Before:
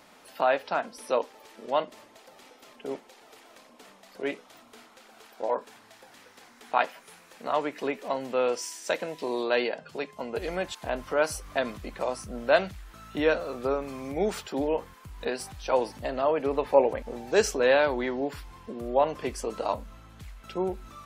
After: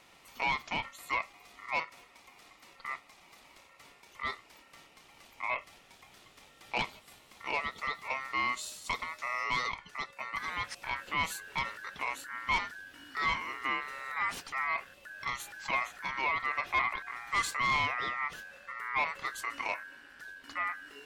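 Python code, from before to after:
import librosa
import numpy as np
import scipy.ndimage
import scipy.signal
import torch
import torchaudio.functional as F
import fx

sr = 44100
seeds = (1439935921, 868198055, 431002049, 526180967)

y = 10.0 ** (-19.5 / 20.0) * np.tanh(x / 10.0 ** (-19.5 / 20.0))
y = y * np.sin(2.0 * np.pi * 1600.0 * np.arange(len(y)) / sr)
y = y * librosa.db_to_amplitude(-1.5)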